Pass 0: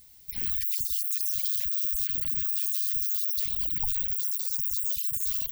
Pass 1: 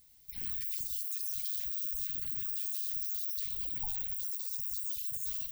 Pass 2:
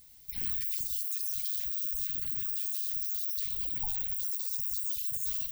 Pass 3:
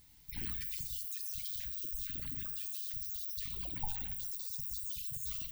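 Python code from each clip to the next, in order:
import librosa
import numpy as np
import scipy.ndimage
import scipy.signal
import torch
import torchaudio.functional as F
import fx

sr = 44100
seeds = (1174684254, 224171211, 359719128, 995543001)

y1 = fx.rev_plate(x, sr, seeds[0], rt60_s=0.96, hf_ratio=0.8, predelay_ms=0, drr_db=6.0)
y1 = y1 * 10.0 ** (-8.5 / 20.0)
y2 = fx.rider(y1, sr, range_db=3, speed_s=0.5)
y2 = y2 * 10.0 ** (3.0 / 20.0)
y3 = fx.high_shelf(y2, sr, hz=3800.0, db=-10.0)
y3 = y3 * 10.0 ** (2.5 / 20.0)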